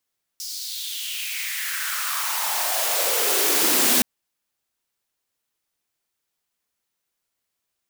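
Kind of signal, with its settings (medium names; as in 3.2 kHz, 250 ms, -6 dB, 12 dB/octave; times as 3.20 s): swept filtered noise white, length 3.62 s highpass, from 5.3 kHz, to 230 Hz, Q 4, exponential, gain ramp +18 dB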